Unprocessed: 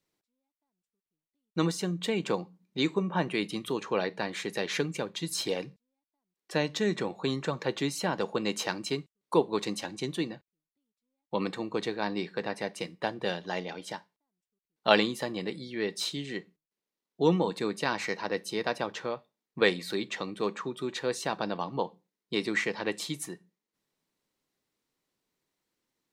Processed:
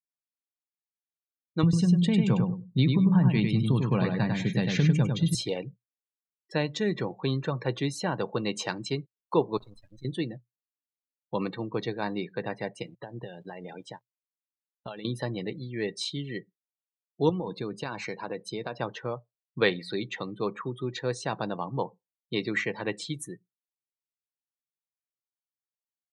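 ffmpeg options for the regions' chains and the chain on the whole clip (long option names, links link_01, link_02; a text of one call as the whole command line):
ffmpeg -i in.wav -filter_complex "[0:a]asettb=1/sr,asplit=3[link_01][link_02][link_03];[link_01]atrim=end=1.634[link_04];[link_02]atrim=start=1.63:end=5.35,asetpts=PTS-STARTPTS,afade=type=in:duration=0.004:curve=qsin,afade=type=out:start_time=3.716:duration=0.004:curve=qsin,lowshelf=frequency=270:width_type=q:width=1.5:gain=10.5,acompressor=threshold=-21dB:ratio=4:attack=3.2:release=140:knee=1:detection=peak,aecho=1:1:99|198|297|396:0.631|0.183|0.0531|0.0154,atrim=end_sample=164052[link_05];[link_03]atrim=start=5.346[link_06];[link_04][link_05]acrossfade=duration=0.004:curve1=hsin:curve2=qsin[link_07];[link_07][link_06]acrossfade=duration=0.004:curve1=qsin:curve2=hsin,asettb=1/sr,asplit=3[link_08][link_09][link_10];[link_08]atrim=end=9.574[link_11];[link_09]atrim=start=9.57:end=10.05,asetpts=PTS-STARTPTS,afade=type=in:duration=0.004:curve=qsin,afade=type=out:start_time=0.476:duration=0.004:curve=qsin,tiltshelf=frequency=890:gain=-5,acompressor=threshold=-39dB:ratio=16:attack=3.2:release=140:knee=1:detection=peak,acrusher=bits=5:dc=4:mix=0:aa=0.000001[link_12];[link_10]atrim=start=10.046[link_13];[link_11][link_12]acrossfade=duration=0.004:curve1=hsin:curve2=qsin[link_14];[link_14][link_13]acrossfade=duration=0.004:curve1=qsin:curve2=hsin,asettb=1/sr,asplit=3[link_15][link_16][link_17];[link_15]atrim=end=12.824[link_18];[link_16]atrim=start=12.82:end=15.05,asetpts=PTS-STARTPTS,afade=type=in:duration=0.004:curve=qsin,afade=type=out:start_time=2.226:duration=0.004:curve=qsin,acompressor=threshold=-34dB:ratio=16:attack=3.2:release=140:knee=1:detection=peak,aeval=exprs='val(0)*gte(abs(val(0)),0.00376)':channel_layout=same[link_19];[link_17]atrim=start=15.046[link_20];[link_18][link_19]acrossfade=duration=0.004:curve1=hsin:curve2=qsin[link_21];[link_21][link_20]acrossfade=duration=0.004:curve1=qsin:curve2=hsin,asettb=1/sr,asplit=3[link_22][link_23][link_24];[link_22]atrim=end=17.294[link_25];[link_23]atrim=start=17.29:end=18.78,asetpts=PTS-STARTPTS,afade=type=in:duration=0.004:curve=qsin,afade=type=out:start_time=1.486:duration=0.004:curve=qsin,bandreject=frequency=1900:width=11,acompressor=threshold=-28dB:ratio=8:attack=3.2:release=140:knee=1:detection=peak[link_26];[link_24]atrim=start=18.776[link_27];[link_25][link_26]acrossfade=duration=0.004:curve1=hsin:curve2=qsin[link_28];[link_28][link_27]acrossfade=duration=0.004:curve1=qsin:curve2=hsin,afftdn=noise_reduction=33:noise_floor=-41,equalizer=frequency=120:width_type=o:width=0.39:gain=14" out.wav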